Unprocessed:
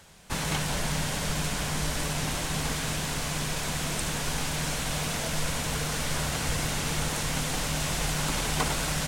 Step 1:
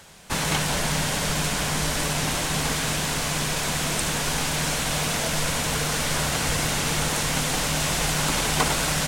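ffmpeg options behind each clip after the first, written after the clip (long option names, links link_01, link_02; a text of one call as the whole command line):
ffmpeg -i in.wav -af "lowshelf=frequency=140:gain=-5.5,volume=6dB" out.wav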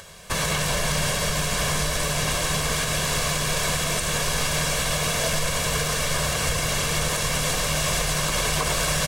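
ffmpeg -i in.wav -af "aecho=1:1:1.8:0.57,alimiter=limit=-15.5dB:level=0:latency=1:release=158,acompressor=mode=upward:threshold=-44dB:ratio=2.5,volume=2dB" out.wav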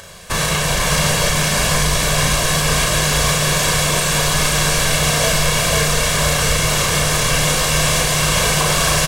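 ffmpeg -i in.wav -filter_complex "[0:a]asplit=2[link_01][link_02];[link_02]adelay=35,volume=-3dB[link_03];[link_01][link_03]amix=inputs=2:normalize=0,aecho=1:1:493:0.668,volume=4.5dB" out.wav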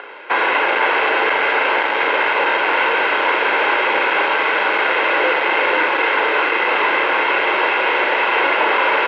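ffmpeg -i in.wav -filter_complex "[0:a]asplit=2[link_01][link_02];[link_02]acrusher=bits=4:mix=0:aa=0.000001,volume=-10dB[link_03];[link_01][link_03]amix=inputs=2:normalize=0,asoftclip=type=hard:threshold=-16dB,highpass=frequency=590:width_type=q:width=0.5412,highpass=frequency=590:width_type=q:width=1.307,lowpass=frequency=2800:width_type=q:width=0.5176,lowpass=frequency=2800:width_type=q:width=0.7071,lowpass=frequency=2800:width_type=q:width=1.932,afreqshift=-140,volume=7.5dB" out.wav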